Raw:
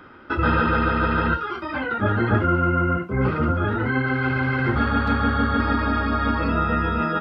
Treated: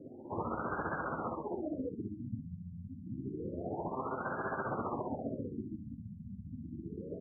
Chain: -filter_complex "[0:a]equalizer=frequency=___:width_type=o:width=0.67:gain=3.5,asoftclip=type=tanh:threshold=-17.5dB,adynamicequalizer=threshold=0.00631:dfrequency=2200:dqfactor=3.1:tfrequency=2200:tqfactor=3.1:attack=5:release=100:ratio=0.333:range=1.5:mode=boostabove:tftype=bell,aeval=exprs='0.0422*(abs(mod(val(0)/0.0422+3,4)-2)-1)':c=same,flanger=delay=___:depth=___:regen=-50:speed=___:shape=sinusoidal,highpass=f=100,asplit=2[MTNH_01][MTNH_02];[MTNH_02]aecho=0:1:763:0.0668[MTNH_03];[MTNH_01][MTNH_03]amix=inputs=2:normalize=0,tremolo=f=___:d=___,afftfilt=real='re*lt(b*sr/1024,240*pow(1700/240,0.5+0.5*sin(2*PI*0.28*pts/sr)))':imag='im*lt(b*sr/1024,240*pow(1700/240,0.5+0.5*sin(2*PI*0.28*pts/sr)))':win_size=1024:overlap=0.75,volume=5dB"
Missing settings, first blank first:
310, 7.7, 4.6, 0.38, 15, 0.52